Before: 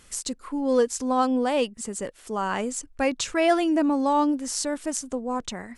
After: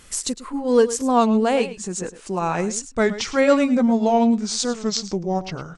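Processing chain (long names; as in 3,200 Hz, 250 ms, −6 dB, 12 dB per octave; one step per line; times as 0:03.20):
pitch glide at a constant tempo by −5.5 semitones starting unshifted
single-tap delay 108 ms −14.5 dB
wow of a warped record 33 1/3 rpm, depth 160 cents
level +5.5 dB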